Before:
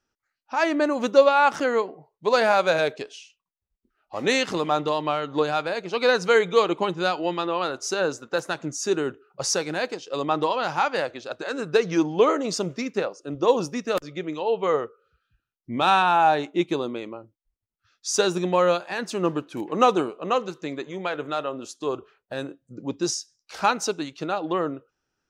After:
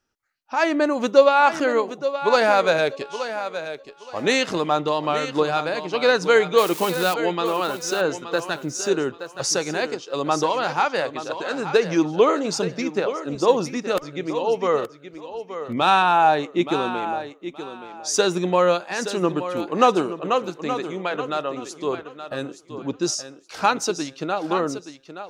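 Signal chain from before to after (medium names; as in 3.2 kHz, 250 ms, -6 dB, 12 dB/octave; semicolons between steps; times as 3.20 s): 6.58–7.14 s: zero-crossing glitches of -21.5 dBFS; thinning echo 873 ms, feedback 23%, high-pass 150 Hz, level -10.5 dB; trim +2 dB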